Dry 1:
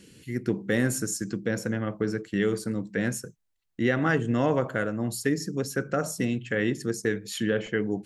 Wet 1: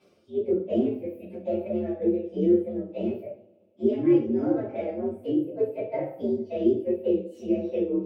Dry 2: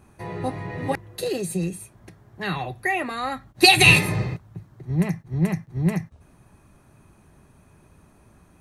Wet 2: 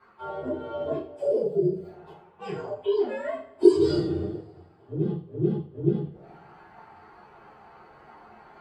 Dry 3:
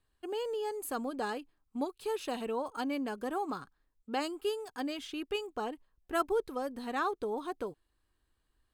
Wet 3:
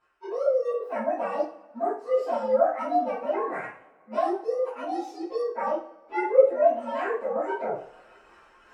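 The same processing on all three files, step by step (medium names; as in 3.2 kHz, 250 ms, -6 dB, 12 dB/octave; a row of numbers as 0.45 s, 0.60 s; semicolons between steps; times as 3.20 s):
frequency axis rescaled in octaves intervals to 125%; band-stop 1 kHz, Q 8.5; reverse; upward compressor, threshold -31 dBFS; reverse; auto-wah 330–1100 Hz, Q 3.6, down, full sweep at -24 dBFS; two-slope reverb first 0.37 s, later 2 s, from -26 dB, DRR -9 dB; normalise loudness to -27 LUFS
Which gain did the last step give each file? +1.5 dB, +2.5 dB, +10.5 dB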